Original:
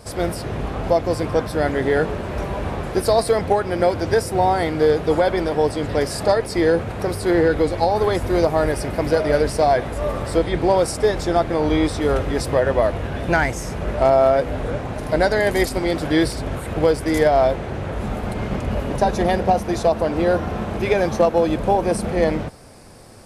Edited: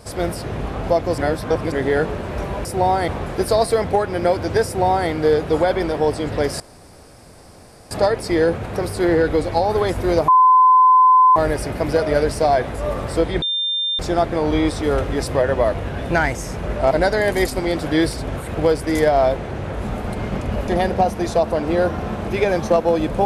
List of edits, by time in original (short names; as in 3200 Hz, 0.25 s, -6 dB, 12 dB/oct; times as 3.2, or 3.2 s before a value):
1.18–1.72 reverse
4.23–4.66 copy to 2.65
6.17 insert room tone 1.31 s
8.54 add tone 1020 Hz -8 dBFS 1.08 s
10.6–11.17 bleep 3600 Hz -18.5 dBFS
14.09–15.1 cut
18.87–19.17 cut